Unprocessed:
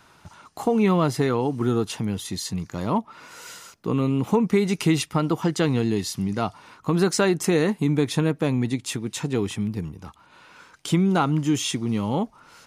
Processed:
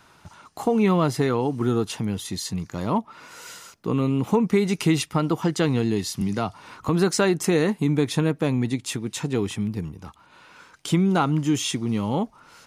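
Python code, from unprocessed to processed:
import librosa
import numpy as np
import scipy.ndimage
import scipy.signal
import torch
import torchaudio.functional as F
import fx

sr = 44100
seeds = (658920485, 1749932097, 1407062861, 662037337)

y = fx.band_squash(x, sr, depth_pct=70, at=(6.21, 6.89))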